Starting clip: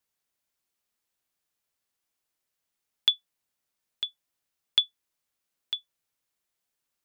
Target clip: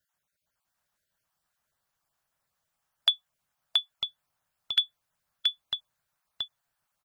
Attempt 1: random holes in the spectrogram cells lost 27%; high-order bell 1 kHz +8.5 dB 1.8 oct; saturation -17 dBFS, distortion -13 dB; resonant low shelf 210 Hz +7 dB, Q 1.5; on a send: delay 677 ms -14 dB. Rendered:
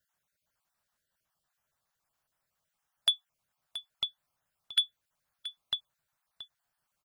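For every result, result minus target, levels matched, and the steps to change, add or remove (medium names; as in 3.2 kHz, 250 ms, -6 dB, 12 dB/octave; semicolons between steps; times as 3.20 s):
saturation: distortion +13 dB; echo-to-direct -12 dB
change: saturation -8 dBFS, distortion -26 dB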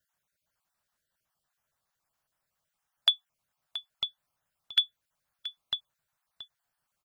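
echo-to-direct -12 dB
change: delay 677 ms -2 dB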